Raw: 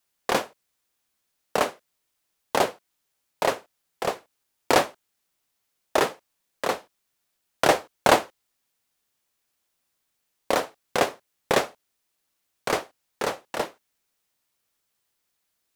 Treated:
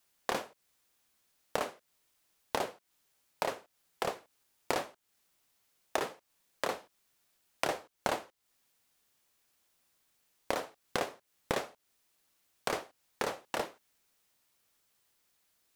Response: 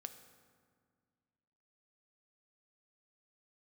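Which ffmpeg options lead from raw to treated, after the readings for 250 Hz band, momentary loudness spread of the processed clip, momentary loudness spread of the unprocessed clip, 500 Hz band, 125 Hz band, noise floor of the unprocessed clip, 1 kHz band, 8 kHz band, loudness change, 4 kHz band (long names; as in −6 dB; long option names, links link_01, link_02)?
−11.5 dB, 6 LU, 11 LU, −11.5 dB, −10.0 dB, −77 dBFS, −11.5 dB, −10.5 dB, −11.0 dB, −10.5 dB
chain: -af "acompressor=threshold=-34dB:ratio=5,volume=2.5dB"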